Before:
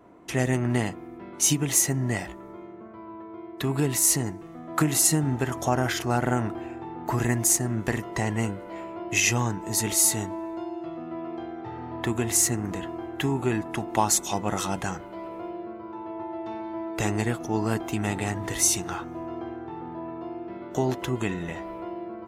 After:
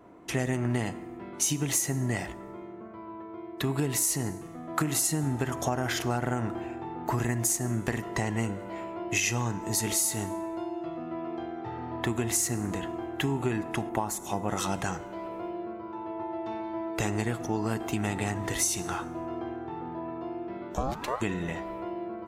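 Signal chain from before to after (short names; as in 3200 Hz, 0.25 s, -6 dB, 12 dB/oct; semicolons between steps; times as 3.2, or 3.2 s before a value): reverb RT60 1.0 s, pre-delay 33 ms, DRR 17.5 dB; 20.74–21.2 ring modulator 290 Hz -> 1000 Hz; compressor 6:1, threshold -24 dBFS, peak gain reduction 8 dB; 13.89–14.49 bell 4700 Hz -11 dB 1.9 oct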